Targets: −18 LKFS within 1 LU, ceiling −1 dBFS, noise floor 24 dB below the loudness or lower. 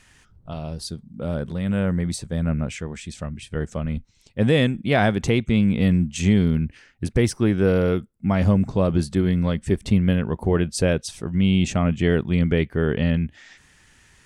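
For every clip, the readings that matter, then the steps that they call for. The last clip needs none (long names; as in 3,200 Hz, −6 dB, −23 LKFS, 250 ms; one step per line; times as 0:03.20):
integrated loudness −22.0 LKFS; sample peak −7.0 dBFS; target loudness −18.0 LKFS
→ level +4 dB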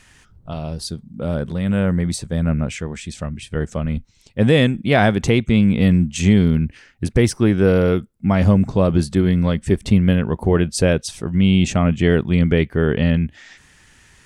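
integrated loudness −18.0 LKFS; sample peak −3.0 dBFS; background noise floor −53 dBFS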